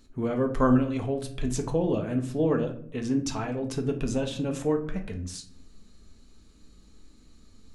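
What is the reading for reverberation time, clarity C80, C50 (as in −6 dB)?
0.60 s, 16.0 dB, 11.0 dB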